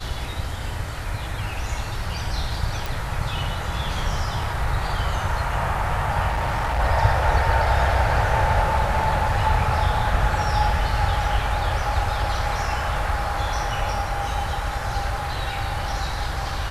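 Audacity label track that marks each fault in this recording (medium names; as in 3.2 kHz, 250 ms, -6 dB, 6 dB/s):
2.860000	2.860000	pop
6.280000	6.800000	clipped -20 dBFS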